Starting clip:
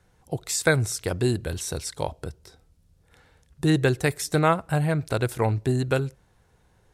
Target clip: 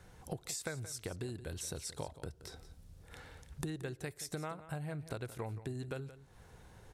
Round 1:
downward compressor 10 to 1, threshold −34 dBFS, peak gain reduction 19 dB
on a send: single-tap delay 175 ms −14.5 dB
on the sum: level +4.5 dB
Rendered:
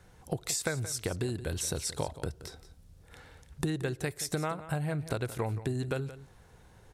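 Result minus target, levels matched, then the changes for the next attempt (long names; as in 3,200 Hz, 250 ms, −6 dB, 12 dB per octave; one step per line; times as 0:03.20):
downward compressor: peak gain reduction −8.5 dB
change: downward compressor 10 to 1, threshold −43.5 dBFS, peak gain reduction 27.5 dB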